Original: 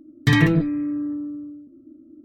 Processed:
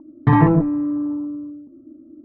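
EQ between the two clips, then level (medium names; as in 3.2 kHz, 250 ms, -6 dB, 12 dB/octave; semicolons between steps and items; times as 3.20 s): resonant low-pass 940 Hz, resonance Q 4.3; +2.5 dB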